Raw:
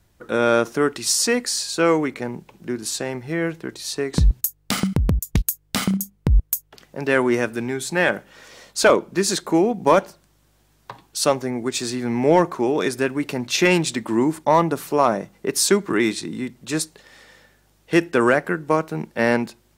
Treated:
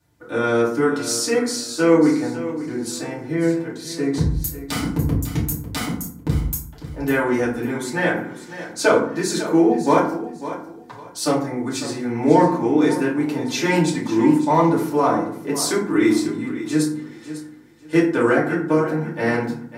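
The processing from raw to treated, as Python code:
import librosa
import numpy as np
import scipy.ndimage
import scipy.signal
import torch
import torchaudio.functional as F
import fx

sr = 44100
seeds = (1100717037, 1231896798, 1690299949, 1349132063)

y = scipy.signal.sosfilt(scipy.signal.butter(2, 81.0, 'highpass', fs=sr, output='sos'), x)
y = fx.notch(y, sr, hz=2700.0, q=22.0)
y = fx.echo_feedback(y, sr, ms=549, feedback_pct=24, wet_db=-13.0)
y = fx.rev_fdn(y, sr, rt60_s=0.58, lf_ratio=1.6, hf_ratio=0.5, size_ms=20.0, drr_db=-7.0)
y = y * 10.0 ** (-9.0 / 20.0)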